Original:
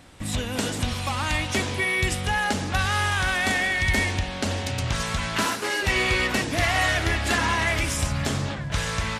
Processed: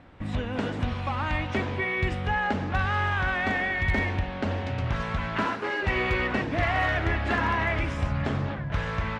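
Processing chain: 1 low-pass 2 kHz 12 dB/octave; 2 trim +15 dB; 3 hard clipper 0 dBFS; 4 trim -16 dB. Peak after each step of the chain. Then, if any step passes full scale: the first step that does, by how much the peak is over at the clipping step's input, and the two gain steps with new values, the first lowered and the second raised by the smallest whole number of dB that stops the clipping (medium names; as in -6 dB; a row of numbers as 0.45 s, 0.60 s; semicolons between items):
-11.5 dBFS, +3.5 dBFS, 0.0 dBFS, -16.0 dBFS; step 2, 3.5 dB; step 2 +11 dB, step 4 -12 dB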